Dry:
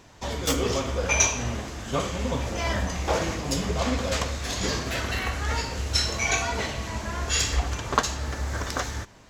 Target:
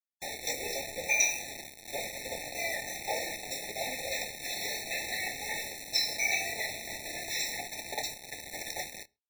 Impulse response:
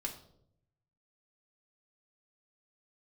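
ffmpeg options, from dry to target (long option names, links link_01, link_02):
-filter_complex "[0:a]highpass=890,highshelf=frequency=9500:gain=-8.5,asplit=2[link_01][link_02];[link_02]acompressor=threshold=-38dB:ratio=6,volume=0dB[link_03];[link_01][link_03]amix=inputs=2:normalize=0,acrusher=bits=4:mix=0:aa=0.000001,asplit=2[link_04][link_05];[link_05]adelay=27,volume=-10.5dB[link_06];[link_04][link_06]amix=inputs=2:normalize=0,asplit=2[link_07][link_08];[1:a]atrim=start_sample=2205,atrim=end_sample=6174[link_09];[link_08][link_09]afir=irnorm=-1:irlink=0,volume=-18dB[link_10];[link_07][link_10]amix=inputs=2:normalize=0,afftfilt=real='re*eq(mod(floor(b*sr/1024/880),2),0)':imag='im*eq(mod(floor(b*sr/1024/880),2),0)':win_size=1024:overlap=0.75,volume=-4.5dB"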